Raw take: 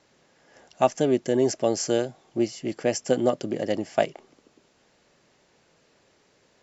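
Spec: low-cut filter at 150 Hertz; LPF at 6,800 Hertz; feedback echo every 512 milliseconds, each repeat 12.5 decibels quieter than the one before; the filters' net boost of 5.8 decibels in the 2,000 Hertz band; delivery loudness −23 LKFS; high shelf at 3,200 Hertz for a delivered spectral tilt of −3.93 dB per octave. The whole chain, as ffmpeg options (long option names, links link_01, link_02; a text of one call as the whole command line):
ffmpeg -i in.wav -af "highpass=150,lowpass=6800,equalizer=frequency=2000:width_type=o:gain=9,highshelf=frequency=3200:gain=-5,aecho=1:1:512|1024|1536:0.237|0.0569|0.0137,volume=2.5dB" out.wav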